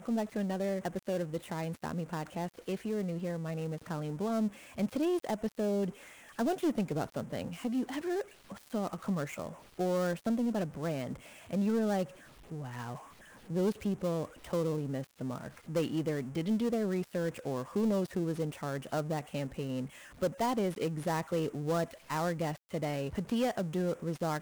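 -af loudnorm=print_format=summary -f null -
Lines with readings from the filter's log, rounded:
Input Integrated:    -34.6 LUFS
Input True Peak:     -22.5 dBTP
Input LRA:             2.5 LU
Input Threshold:     -44.8 LUFS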